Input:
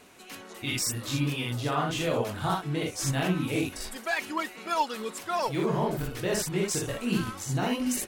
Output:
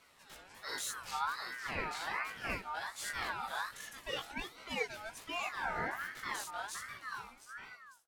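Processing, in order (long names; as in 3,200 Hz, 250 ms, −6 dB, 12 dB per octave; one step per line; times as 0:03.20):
fade-out on the ending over 2.03 s
chorus effect 0.4 Hz, delay 15 ms, depth 5.8 ms
ring modulator whose carrier an LFO sweeps 1,400 Hz, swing 25%, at 1.3 Hz
level −4.5 dB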